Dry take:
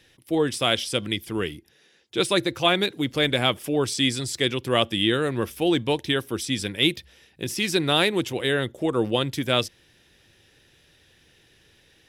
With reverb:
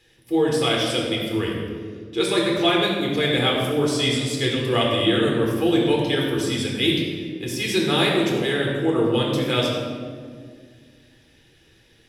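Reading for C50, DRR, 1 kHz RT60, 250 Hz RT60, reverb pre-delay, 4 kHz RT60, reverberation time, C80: 1.0 dB, -2.5 dB, 1.6 s, 2.8 s, 9 ms, 1.1 s, 1.9 s, 3.0 dB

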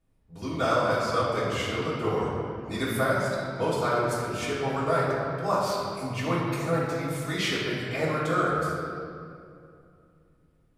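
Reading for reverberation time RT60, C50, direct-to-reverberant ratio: 2.4 s, -1.5 dB, -11.0 dB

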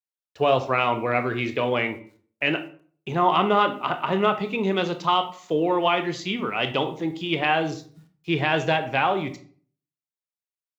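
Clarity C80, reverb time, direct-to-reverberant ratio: 17.0 dB, 0.45 s, 8.0 dB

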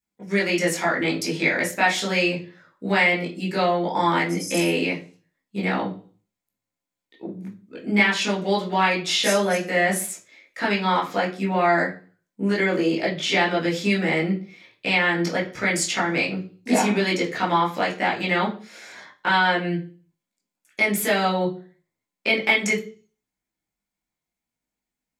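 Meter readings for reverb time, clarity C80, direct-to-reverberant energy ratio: 0.40 s, 16.0 dB, -6.0 dB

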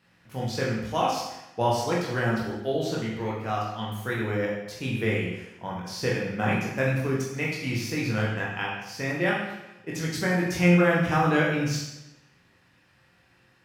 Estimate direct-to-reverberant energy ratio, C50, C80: -4.5 dB, 2.0 dB, 4.5 dB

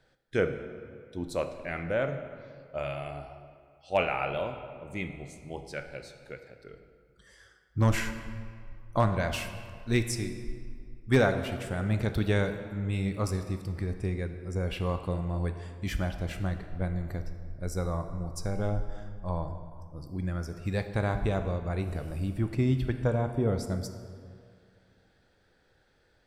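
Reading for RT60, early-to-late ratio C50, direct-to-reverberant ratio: 2.2 s, 9.0 dB, 7.5 dB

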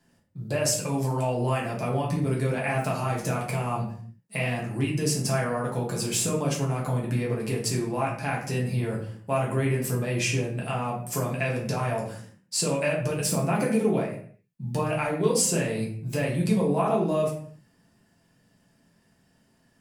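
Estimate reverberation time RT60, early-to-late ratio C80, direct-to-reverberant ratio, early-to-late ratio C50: 0.55 s, 10.0 dB, -4.0 dB, 6.0 dB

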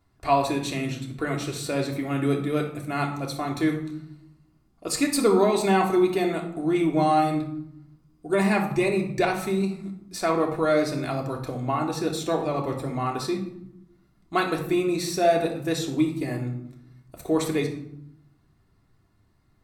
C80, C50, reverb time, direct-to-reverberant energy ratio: 11.0 dB, 7.5 dB, 0.75 s, 1.0 dB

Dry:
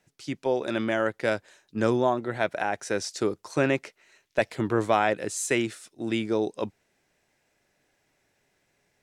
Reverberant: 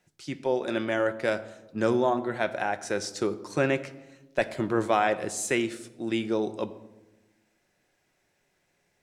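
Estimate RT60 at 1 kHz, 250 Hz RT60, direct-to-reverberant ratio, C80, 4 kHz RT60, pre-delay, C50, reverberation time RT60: 0.95 s, 1.6 s, 9.5 dB, 17.5 dB, 0.70 s, 6 ms, 15.5 dB, 1.1 s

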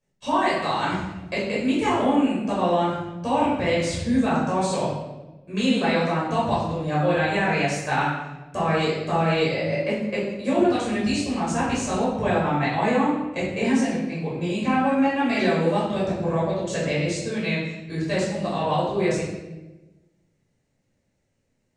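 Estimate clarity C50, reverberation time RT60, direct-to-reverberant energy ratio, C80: 1.0 dB, 1.1 s, -8.5 dB, 4.0 dB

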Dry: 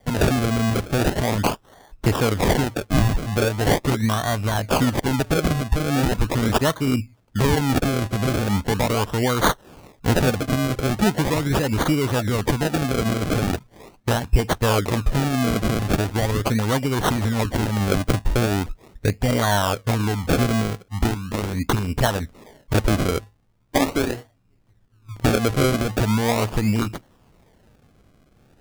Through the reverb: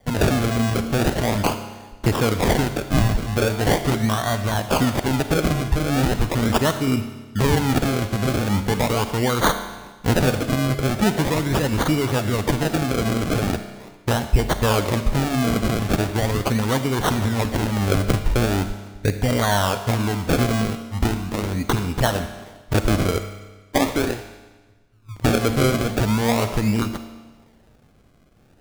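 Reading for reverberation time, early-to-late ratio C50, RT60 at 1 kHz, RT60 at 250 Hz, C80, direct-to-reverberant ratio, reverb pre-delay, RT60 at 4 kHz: 1.3 s, 9.5 dB, 1.3 s, 1.3 s, 11.0 dB, 9.0 dB, 36 ms, 1.2 s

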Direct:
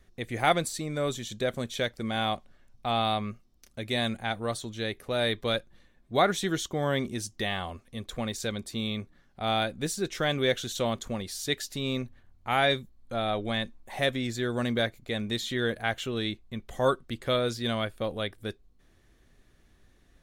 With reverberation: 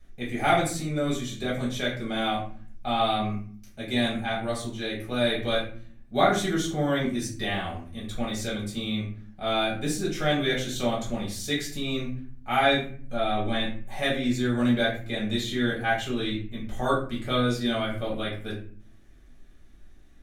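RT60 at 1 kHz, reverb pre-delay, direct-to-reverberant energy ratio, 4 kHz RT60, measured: 0.45 s, 3 ms, -5.5 dB, 0.30 s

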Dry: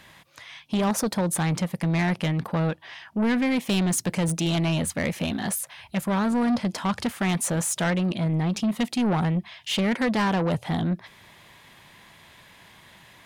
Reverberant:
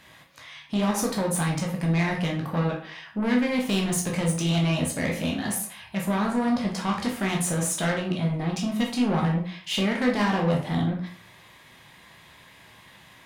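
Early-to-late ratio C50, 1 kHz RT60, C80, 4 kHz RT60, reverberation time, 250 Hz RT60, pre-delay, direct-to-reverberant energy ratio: 6.5 dB, 0.45 s, 11.0 dB, 0.40 s, 0.50 s, 0.45 s, 11 ms, -1.0 dB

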